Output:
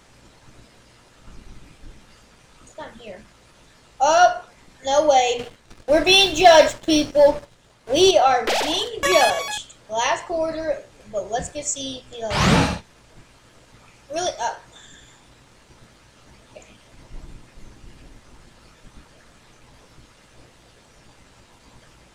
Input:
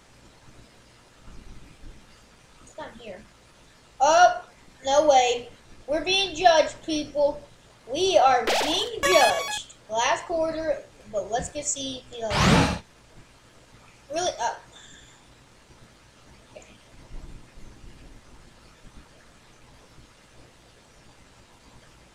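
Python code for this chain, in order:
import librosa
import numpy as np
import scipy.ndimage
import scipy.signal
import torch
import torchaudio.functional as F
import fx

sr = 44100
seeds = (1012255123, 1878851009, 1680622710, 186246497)

y = fx.leveller(x, sr, passes=2, at=(5.39, 8.11))
y = y * librosa.db_to_amplitude(2.0)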